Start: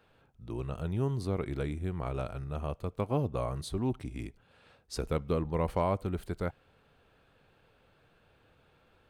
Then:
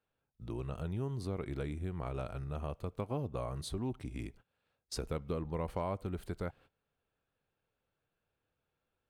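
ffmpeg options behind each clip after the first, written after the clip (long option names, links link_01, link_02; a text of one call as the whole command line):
ffmpeg -i in.wav -af "agate=range=-22dB:threshold=-53dB:ratio=16:detection=peak,acompressor=threshold=-41dB:ratio=2,volume=1.5dB" out.wav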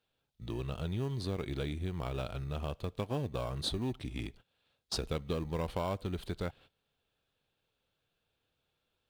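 ffmpeg -i in.wav -filter_complex "[0:a]equalizer=frequency=3600:width_type=o:width=0.96:gain=12.5,asplit=2[link_01][link_02];[link_02]acrusher=samples=21:mix=1:aa=0.000001,volume=-12dB[link_03];[link_01][link_03]amix=inputs=2:normalize=0" out.wav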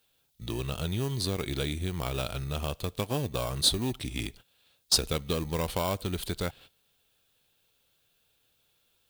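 ffmpeg -i in.wav -af "crystalizer=i=3.5:c=0,volume=4dB" out.wav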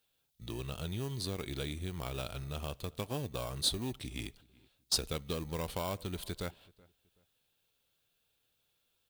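ffmpeg -i in.wav -filter_complex "[0:a]asplit=2[link_01][link_02];[link_02]adelay=377,lowpass=frequency=2000:poles=1,volume=-24dB,asplit=2[link_03][link_04];[link_04]adelay=377,lowpass=frequency=2000:poles=1,volume=0.31[link_05];[link_01][link_03][link_05]amix=inputs=3:normalize=0,volume=-7dB" out.wav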